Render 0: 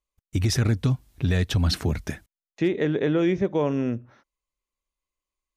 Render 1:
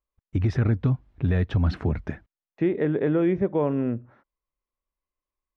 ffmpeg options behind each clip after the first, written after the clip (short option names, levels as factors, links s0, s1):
-af "lowpass=1700"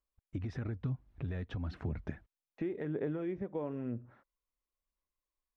-af "acompressor=threshold=0.0251:ratio=3,aphaser=in_gain=1:out_gain=1:delay=4.2:decay=0.29:speed=1:type=sinusoidal,volume=0.531"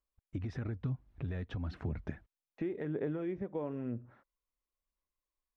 -af anull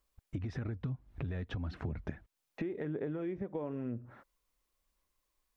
-af "acompressor=threshold=0.00282:ratio=2.5,volume=3.35"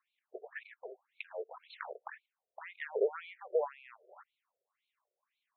-af "aeval=exprs='0.0631*(cos(1*acos(clip(val(0)/0.0631,-1,1)))-cos(1*PI/2))+0.00355*(cos(7*acos(clip(val(0)/0.0631,-1,1)))-cos(7*PI/2))':c=same,afftfilt=real='re*between(b*sr/1024,490*pow(3100/490,0.5+0.5*sin(2*PI*1.9*pts/sr))/1.41,490*pow(3100/490,0.5+0.5*sin(2*PI*1.9*pts/sr))*1.41)':imag='im*between(b*sr/1024,490*pow(3100/490,0.5+0.5*sin(2*PI*1.9*pts/sr))/1.41,490*pow(3100/490,0.5+0.5*sin(2*PI*1.9*pts/sr))*1.41)':win_size=1024:overlap=0.75,volume=3.55"